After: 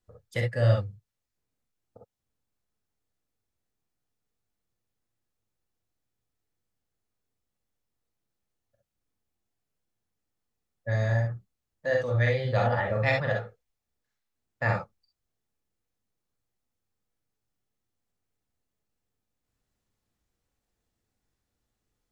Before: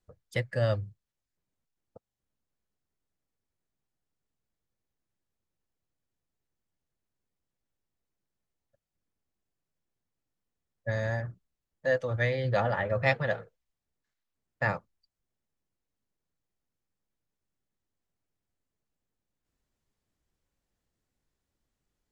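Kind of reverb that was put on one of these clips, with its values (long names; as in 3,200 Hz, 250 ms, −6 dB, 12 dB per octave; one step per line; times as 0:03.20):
reverb whose tail is shaped and stops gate 80 ms rising, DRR 0.5 dB
level −1 dB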